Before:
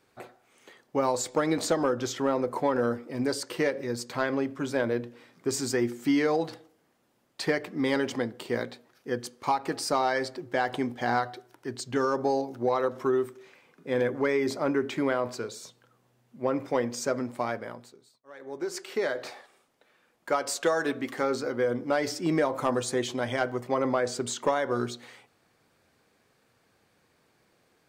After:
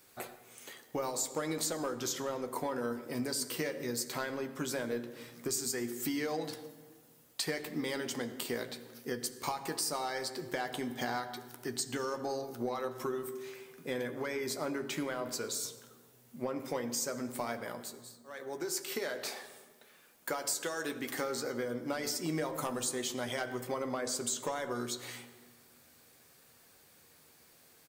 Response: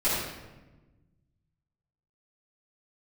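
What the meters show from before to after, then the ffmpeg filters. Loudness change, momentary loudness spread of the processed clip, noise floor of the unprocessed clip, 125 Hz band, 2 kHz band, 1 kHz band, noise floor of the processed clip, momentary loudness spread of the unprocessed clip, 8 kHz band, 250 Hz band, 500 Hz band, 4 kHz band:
−7.5 dB, 11 LU, −68 dBFS, −7.5 dB, −7.0 dB, −9.5 dB, −62 dBFS, 10 LU, +1.5 dB, −8.5 dB, −9.5 dB, −1.5 dB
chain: -filter_complex "[0:a]aemphasis=mode=production:type=75fm,acompressor=threshold=-35dB:ratio=4,asplit=2[link_01][link_02];[link_02]adelay=13,volume=-10.5dB[link_03];[link_01][link_03]amix=inputs=2:normalize=0,asplit=2[link_04][link_05];[1:a]atrim=start_sample=2205,asetrate=32193,aresample=44100[link_06];[link_05][link_06]afir=irnorm=-1:irlink=0,volume=-24.5dB[link_07];[link_04][link_07]amix=inputs=2:normalize=0"

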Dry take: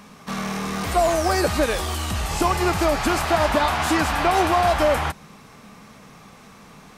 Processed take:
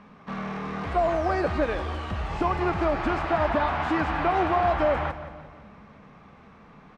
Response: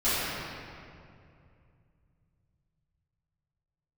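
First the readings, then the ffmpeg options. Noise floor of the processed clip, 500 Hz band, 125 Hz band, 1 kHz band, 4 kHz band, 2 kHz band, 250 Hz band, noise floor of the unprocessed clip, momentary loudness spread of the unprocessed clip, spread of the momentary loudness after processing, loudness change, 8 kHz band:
−51 dBFS, −4.0 dB, −4.0 dB, −4.0 dB, −13.0 dB, −6.0 dB, −4.0 dB, −47 dBFS, 9 LU, 10 LU, −5.0 dB, below −25 dB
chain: -filter_complex "[0:a]lowpass=2200,aecho=1:1:173|346|519|692:0.2|0.0918|0.0422|0.0194,asplit=2[link_01][link_02];[1:a]atrim=start_sample=2205[link_03];[link_02][link_03]afir=irnorm=-1:irlink=0,volume=-34dB[link_04];[link_01][link_04]amix=inputs=2:normalize=0,volume=-4.5dB"

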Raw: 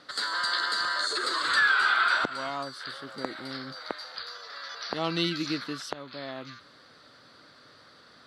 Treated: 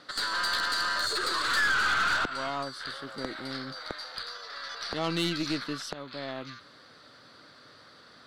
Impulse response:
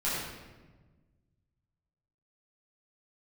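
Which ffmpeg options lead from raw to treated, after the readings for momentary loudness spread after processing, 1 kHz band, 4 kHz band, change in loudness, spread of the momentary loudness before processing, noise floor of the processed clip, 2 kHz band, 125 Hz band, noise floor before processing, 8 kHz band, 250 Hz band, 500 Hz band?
14 LU, −1.5 dB, −0.5 dB, −1.5 dB, 17 LU, −55 dBFS, −2.0 dB, +1.0 dB, −55 dBFS, +2.5 dB, 0.0 dB, −0.5 dB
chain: -af "aeval=exprs='(tanh(15.8*val(0)+0.35)-tanh(0.35))/15.8':channel_layout=same,volume=2dB"

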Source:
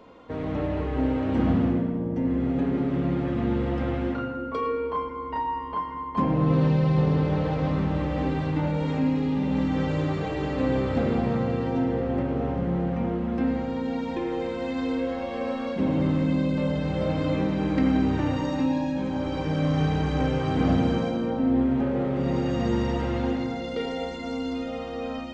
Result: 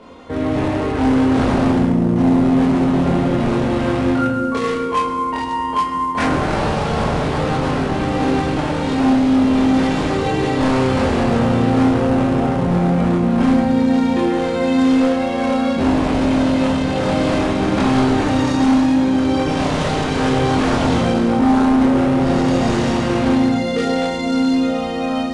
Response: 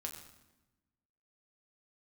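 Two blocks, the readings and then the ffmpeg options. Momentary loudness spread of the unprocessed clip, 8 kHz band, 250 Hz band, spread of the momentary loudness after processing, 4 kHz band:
8 LU, can't be measured, +9.5 dB, 5 LU, +13.0 dB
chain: -filter_complex "[0:a]aeval=exprs='0.075*(abs(mod(val(0)/0.075+3,4)-2)-1)':channel_layout=same,asplit=2[link_01][link_02];[1:a]atrim=start_sample=2205,highshelf=frequency=4000:gain=11,adelay=23[link_03];[link_02][link_03]afir=irnorm=-1:irlink=0,volume=1.5dB[link_04];[link_01][link_04]amix=inputs=2:normalize=0,volume=7dB" -ar 22050 -c:a adpcm_ima_wav

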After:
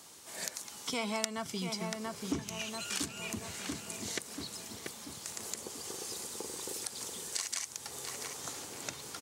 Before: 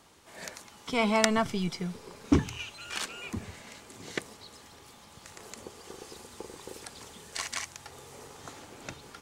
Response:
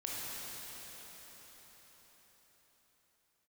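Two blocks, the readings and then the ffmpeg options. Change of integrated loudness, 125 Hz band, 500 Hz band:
−6.5 dB, −9.0 dB, −7.5 dB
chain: -filter_complex "[0:a]highpass=100,bass=frequency=250:gain=-1,treble=frequency=4000:gain=12,asplit=2[link_01][link_02];[link_02]adelay=686,lowpass=frequency=2300:poles=1,volume=-8.5dB,asplit=2[link_03][link_04];[link_04]adelay=686,lowpass=frequency=2300:poles=1,volume=0.5,asplit=2[link_05][link_06];[link_06]adelay=686,lowpass=frequency=2300:poles=1,volume=0.5,asplit=2[link_07][link_08];[link_08]adelay=686,lowpass=frequency=2300:poles=1,volume=0.5,asplit=2[link_09][link_10];[link_10]adelay=686,lowpass=frequency=2300:poles=1,volume=0.5,asplit=2[link_11][link_12];[link_12]adelay=686,lowpass=frequency=2300:poles=1,volume=0.5[link_13];[link_03][link_05][link_07][link_09][link_11][link_13]amix=inputs=6:normalize=0[link_14];[link_01][link_14]amix=inputs=2:normalize=0,acompressor=threshold=-35dB:ratio=3"

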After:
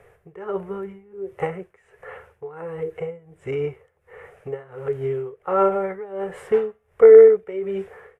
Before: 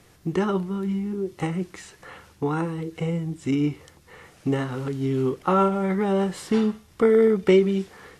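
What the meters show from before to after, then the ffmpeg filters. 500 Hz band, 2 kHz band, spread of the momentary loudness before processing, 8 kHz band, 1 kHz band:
+6.5 dB, −2.5 dB, 11 LU, below −10 dB, −1.0 dB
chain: -af "firequalizer=gain_entry='entry(100,0);entry(290,-18);entry(420,11);entry(970,1);entry(1700,4);entry(2400,0);entry(4200,-21);entry(9000,-9)':delay=0.05:min_phase=1,tremolo=f=1.4:d=0.89"

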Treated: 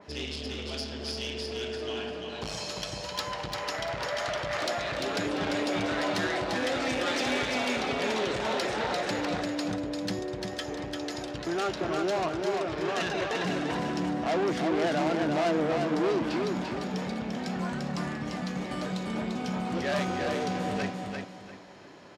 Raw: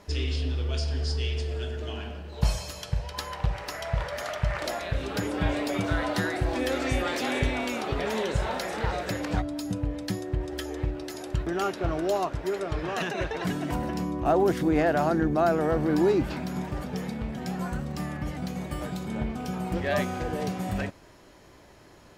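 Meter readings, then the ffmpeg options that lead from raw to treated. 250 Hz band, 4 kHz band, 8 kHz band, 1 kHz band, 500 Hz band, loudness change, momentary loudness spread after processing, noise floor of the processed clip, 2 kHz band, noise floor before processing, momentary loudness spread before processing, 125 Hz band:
−1.5 dB, +3.5 dB, +0.5 dB, −0.5 dB, −1.0 dB, −1.5 dB, 8 LU, −39 dBFS, +1.0 dB, −52 dBFS, 10 LU, −7.5 dB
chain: -filter_complex "[0:a]lowpass=5000,asoftclip=type=tanh:threshold=-27dB,highpass=160,asplit=2[link_01][link_02];[link_02]aecho=0:1:345|690|1035|1380:0.631|0.177|0.0495|0.0139[link_03];[link_01][link_03]amix=inputs=2:normalize=0,adynamicequalizer=threshold=0.00316:dfrequency=3100:dqfactor=0.7:tfrequency=3100:tqfactor=0.7:attack=5:release=100:ratio=0.375:range=3:mode=boostabove:tftype=highshelf,volume=2dB"

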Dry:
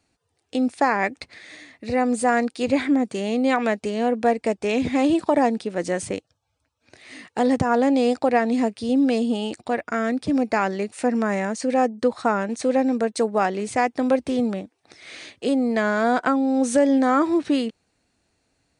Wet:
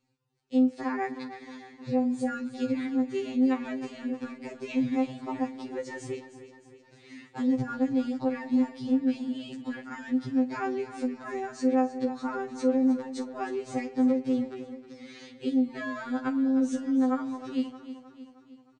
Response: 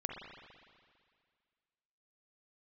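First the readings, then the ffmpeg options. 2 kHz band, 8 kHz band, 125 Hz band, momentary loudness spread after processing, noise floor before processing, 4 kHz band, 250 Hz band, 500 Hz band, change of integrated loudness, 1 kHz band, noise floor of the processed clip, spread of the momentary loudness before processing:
−12.5 dB, below −10 dB, −8.0 dB, 14 LU, −74 dBFS, −11.5 dB, −5.0 dB, −11.5 dB, −7.5 dB, −13.0 dB, −58 dBFS, 8 LU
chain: -filter_complex "[0:a]lowpass=frequency=7400:width=0.5412,lowpass=frequency=7400:width=1.3066,equalizer=frequency=130:width_type=o:width=2.6:gain=9,bandreject=frequency=650:width=12,acompressor=threshold=-17dB:ratio=6,aecho=1:1:311|622|933|1244|1555:0.224|0.119|0.0629|0.0333|0.0177,asplit=2[link_01][link_02];[1:a]atrim=start_sample=2205,highshelf=frequency=3400:gain=9,adelay=43[link_03];[link_02][link_03]afir=irnorm=-1:irlink=0,volume=-18.5dB[link_04];[link_01][link_04]amix=inputs=2:normalize=0,afftfilt=real='re*2.45*eq(mod(b,6),0)':imag='im*2.45*eq(mod(b,6),0)':win_size=2048:overlap=0.75,volume=-7.5dB"

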